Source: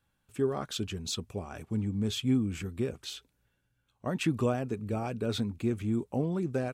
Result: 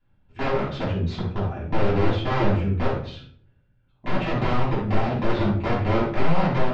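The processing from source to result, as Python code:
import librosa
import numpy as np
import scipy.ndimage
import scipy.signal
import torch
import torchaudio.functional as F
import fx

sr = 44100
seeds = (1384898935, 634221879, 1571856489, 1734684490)

y = fx.low_shelf(x, sr, hz=240.0, db=3.5)
y = fx.notch(y, sr, hz=1100.0, q=14.0)
y = (np.mod(10.0 ** (24.5 / 20.0) * y + 1.0, 2.0) - 1.0) / 10.0 ** (24.5 / 20.0)
y = scipy.ndimage.gaussian_filter1d(y, 2.4, mode='constant')
y = fx.room_shoebox(y, sr, seeds[0], volume_m3=630.0, walls='furnished', distance_m=9.4)
y = F.gain(torch.from_numpy(y), -5.5).numpy()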